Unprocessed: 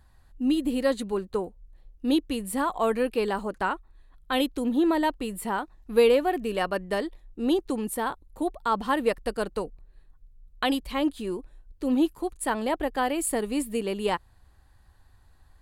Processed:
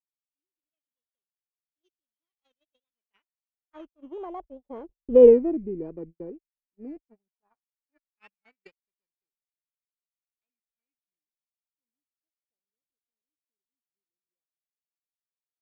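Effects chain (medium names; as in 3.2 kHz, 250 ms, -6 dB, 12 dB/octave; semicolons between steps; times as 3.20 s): sorted samples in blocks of 16 samples; Doppler pass-by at 5.25 s, 47 m/s, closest 2.7 m; gate -53 dBFS, range -49 dB; in parallel at -1 dB: compression, threshold -35 dBFS, peak gain reduction 17 dB; on the sum: vibrato 4.6 Hz 77 cents; LFO low-pass sine 0.13 Hz 360–4700 Hz; warped record 33 1/3 rpm, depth 160 cents; trim +5 dB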